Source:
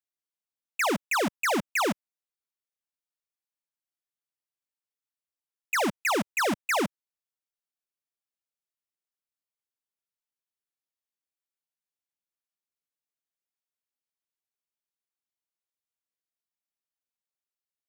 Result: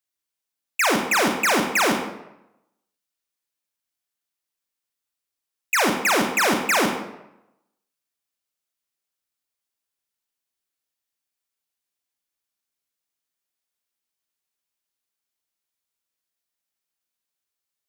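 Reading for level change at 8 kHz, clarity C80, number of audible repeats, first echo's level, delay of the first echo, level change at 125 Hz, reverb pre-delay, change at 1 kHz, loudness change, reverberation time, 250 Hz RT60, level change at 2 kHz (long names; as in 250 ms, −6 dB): +9.0 dB, 7.0 dB, no echo audible, no echo audible, no echo audible, +5.0 dB, 30 ms, +6.5 dB, +7.0 dB, 0.85 s, 0.85 s, +7.5 dB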